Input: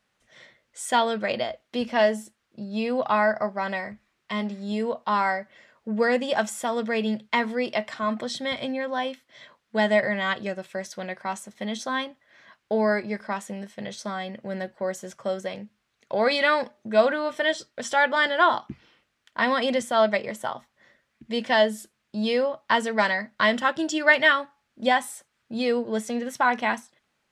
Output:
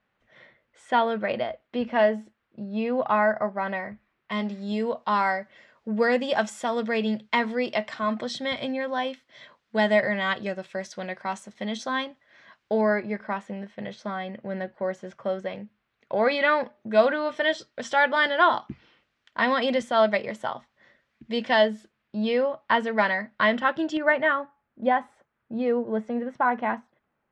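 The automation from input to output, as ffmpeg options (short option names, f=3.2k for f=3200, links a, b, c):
-af "asetnsamples=n=441:p=0,asendcmd='4.32 lowpass f 6000;12.81 lowpass f 2800;16.91 lowpass f 4800;21.68 lowpass f 2900;23.97 lowpass f 1400',lowpass=2.4k"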